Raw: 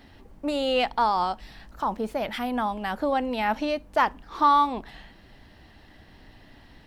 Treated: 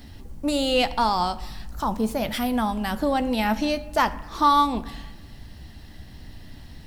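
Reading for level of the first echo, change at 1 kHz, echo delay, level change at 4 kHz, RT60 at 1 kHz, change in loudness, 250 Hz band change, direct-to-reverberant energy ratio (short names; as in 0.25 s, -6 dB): none, +0.5 dB, none, +5.0 dB, 1.2 s, +2.0 dB, +5.5 dB, 11.0 dB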